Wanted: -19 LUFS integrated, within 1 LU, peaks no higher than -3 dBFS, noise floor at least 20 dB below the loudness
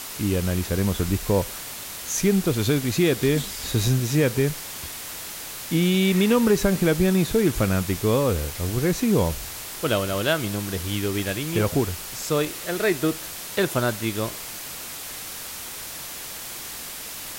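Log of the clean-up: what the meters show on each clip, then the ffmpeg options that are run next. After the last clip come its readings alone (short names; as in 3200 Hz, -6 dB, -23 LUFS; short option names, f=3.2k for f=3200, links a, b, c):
noise floor -36 dBFS; noise floor target -44 dBFS; loudness -24.0 LUFS; peak -8.0 dBFS; loudness target -19.0 LUFS
-> -af "afftdn=nr=8:nf=-36"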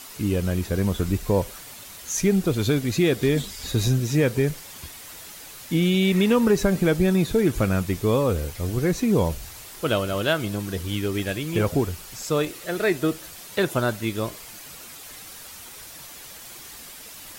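noise floor -42 dBFS; noise floor target -44 dBFS
-> -af "afftdn=nr=6:nf=-42"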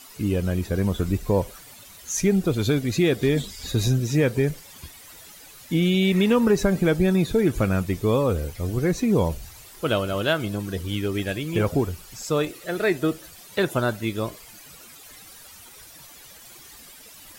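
noise floor -46 dBFS; loudness -23.5 LUFS; peak -8.5 dBFS; loudness target -19.0 LUFS
-> -af "volume=4.5dB"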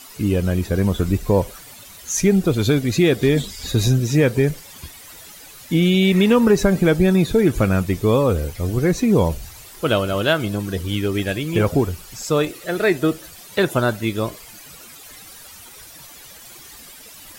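loudness -19.0 LUFS; peak -4.0 dBFS; noise floor -42 dBFS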